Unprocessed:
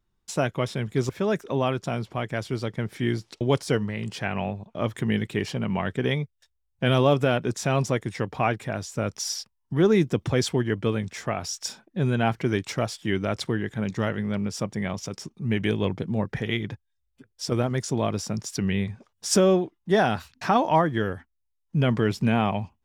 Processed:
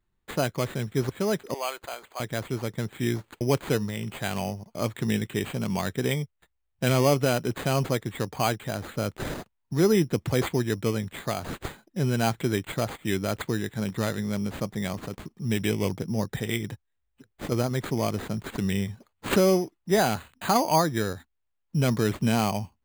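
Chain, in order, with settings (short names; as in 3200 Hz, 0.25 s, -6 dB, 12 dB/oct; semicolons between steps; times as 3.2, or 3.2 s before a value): 1.54–2.2 Bessel high-pass 760 Hz, order 4; careless resampling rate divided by 8×, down none, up hold; gain -1.5 dB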